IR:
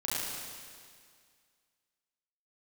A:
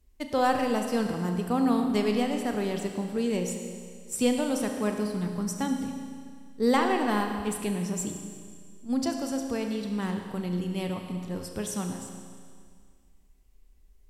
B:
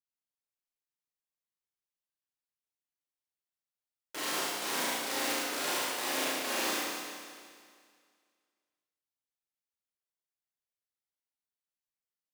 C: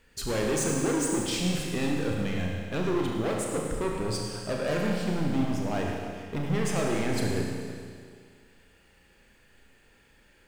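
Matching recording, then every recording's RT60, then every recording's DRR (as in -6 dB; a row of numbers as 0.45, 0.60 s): B; 2.0, 2.0, 2.0 s; 4.0, -8.5, -1.0 dB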